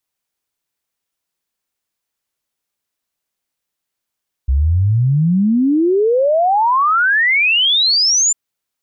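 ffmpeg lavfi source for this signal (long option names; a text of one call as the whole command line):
ffmpeg -f lavfi -i "aevalsrc='0.299*clip(min(t,3.85-t)/0.01,0,1)*sin(2*PI*63*3.85/log(7300/63)*(exp(log(7300/63)*t/3.85)-1))':duration=3.85:sample_rate=44100" out.wav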